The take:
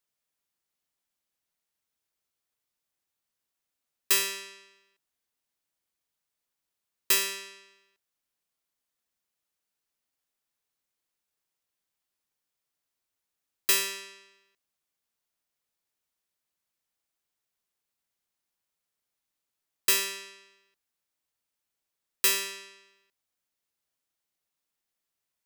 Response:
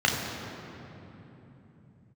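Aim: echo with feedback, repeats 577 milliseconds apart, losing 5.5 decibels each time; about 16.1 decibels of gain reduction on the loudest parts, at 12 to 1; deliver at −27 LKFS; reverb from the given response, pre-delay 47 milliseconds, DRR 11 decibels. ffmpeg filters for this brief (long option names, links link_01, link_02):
-filter_complex "[0:a]acompressor=threshold=-35dB:ratio=12,aecho=1:1:577|1154|1731|2308|2885|3462|4039:0.531|0.281|0.149|0.079|0.0419|0.0222|0.0118,asplit=2[link_01][link_02];[1:a]atrim=start_sample=2205,adelay=47[link_03];[link_02][link_03]afir=irnorm=-1:irlink=0,volume=-26.5dB[link_04];[link_01][link_04]amix=inputs=2:normalize=0,volume=16dB"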